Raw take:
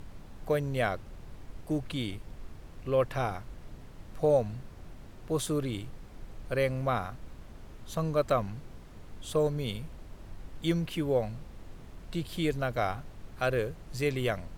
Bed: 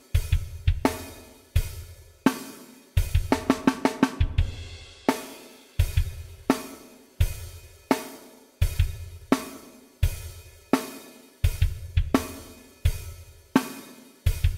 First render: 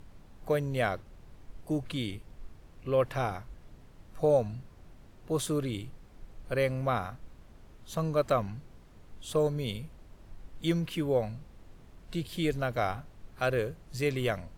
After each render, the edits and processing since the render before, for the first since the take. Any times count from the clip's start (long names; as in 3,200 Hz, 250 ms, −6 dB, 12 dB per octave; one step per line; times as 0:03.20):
noise reduction from a noise print 6 dB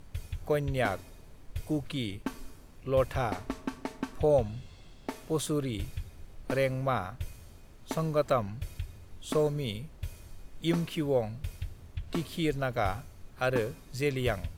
mix in bed −14.5 dB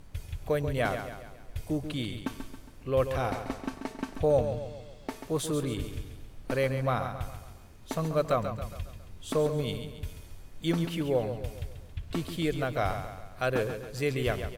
repeating echo 137 ms, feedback 48%, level −9 dB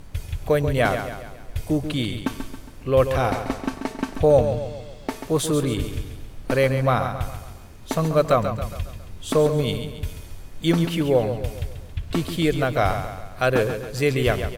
level +8.5 dB